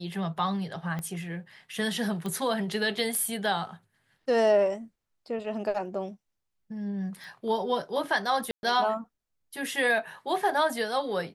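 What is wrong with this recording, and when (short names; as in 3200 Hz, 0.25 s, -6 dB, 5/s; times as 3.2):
0.99 pop -22 dBFS
2.26 pop -21 dBFS
7.24 pop
8.51–8.63 gap 0.121 s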